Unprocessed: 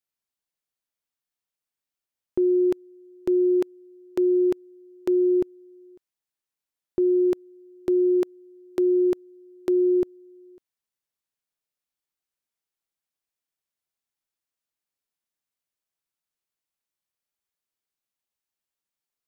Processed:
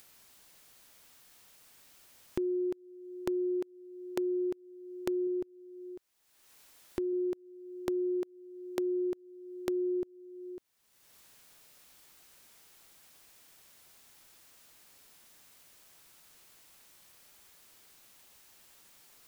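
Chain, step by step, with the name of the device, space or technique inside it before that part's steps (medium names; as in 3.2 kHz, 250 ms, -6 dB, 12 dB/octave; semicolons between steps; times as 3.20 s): upward and downward compression (upward compressor, threshold -34 dBFS; compression 6:1, threshold -30 dBFS, peak gain reduction 10.5 dB); 5.27–7.13 s: peaking EQ 150 Hz -5 dB 1.4 oct; trim -1 dB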